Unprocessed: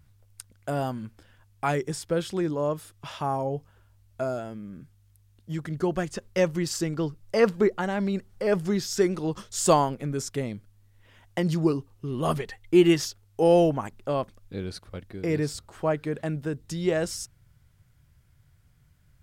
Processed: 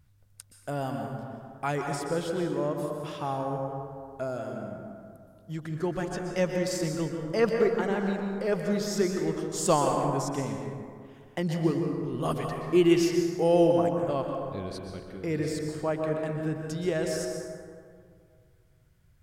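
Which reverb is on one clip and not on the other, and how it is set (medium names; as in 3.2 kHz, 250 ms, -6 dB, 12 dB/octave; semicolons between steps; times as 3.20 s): plate-style reverb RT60 2.2 s, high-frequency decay 0.4×, pre-delay 110 ms, DRR 2 dB; trim -4 dB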